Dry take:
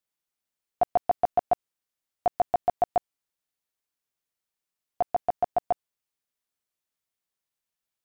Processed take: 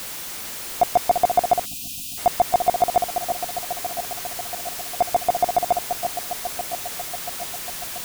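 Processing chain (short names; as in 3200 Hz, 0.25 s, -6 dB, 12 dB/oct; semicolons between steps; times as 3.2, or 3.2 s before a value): zero-crossing step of -30 dBFS; echo with dull and thin repeats by turns 0.342 s, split 1500 Hz, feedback 79%, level -7 dB; spectral gain 1.66–2.18, 320–2400 Hz -30 dB; gain +4.5 dB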